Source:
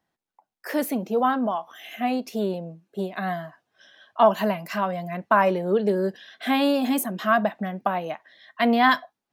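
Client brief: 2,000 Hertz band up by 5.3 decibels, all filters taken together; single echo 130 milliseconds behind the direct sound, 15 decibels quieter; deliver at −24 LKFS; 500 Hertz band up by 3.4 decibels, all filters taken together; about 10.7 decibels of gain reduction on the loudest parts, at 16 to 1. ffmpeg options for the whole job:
ffmpeg -i in.wav -af "equalizer=frequency=500:width_type=o:gain=4,equalizer=frequency=2000:width_type=o:gain=6.5,acompressor=threshold=-20dB:ratio=16,aecho=1:1:130:0.178,volume=3dB" out.wav

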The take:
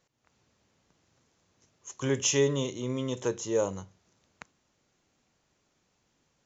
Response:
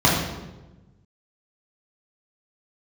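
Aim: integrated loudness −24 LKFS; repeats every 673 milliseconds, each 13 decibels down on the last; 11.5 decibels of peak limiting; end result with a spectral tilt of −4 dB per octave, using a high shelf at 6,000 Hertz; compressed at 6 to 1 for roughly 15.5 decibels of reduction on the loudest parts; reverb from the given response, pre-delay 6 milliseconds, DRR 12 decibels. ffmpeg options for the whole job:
-filter_complex "[0:a]highshelf=frequency=6000:gain=4,acompressor=threshold=-38dB:ratio=6,alimiter=level_in=10.5dB:limit=-24dB:level=0:latency=1,volume=-10.5dB,aecho=1:1:673|1346|2019:0.224|0.0493|0.0108,asplit=2[link_01][link_02];[1:a]atrim=start_sample=2205,adelay=6[link_03];[link_02][link_03]afir=irnorm=-1:irlink=0,volume=-33.5dB[link_04];[link_01][link_04]amix=inputs=2:normalize=0,volume=21.5dB"

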